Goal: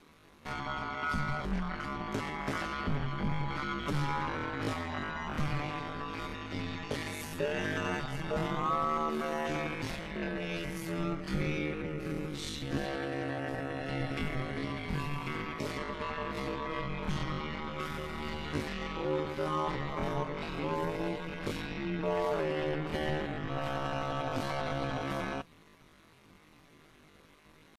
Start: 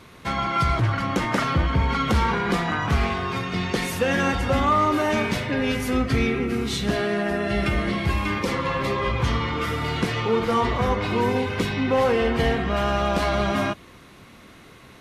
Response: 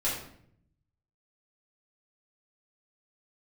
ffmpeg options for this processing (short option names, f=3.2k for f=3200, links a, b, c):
-af "aeval=exprs='val(0)*sin(2*PI*77*n/s)':c=same,atempo=0.54,volume=-8.5dB"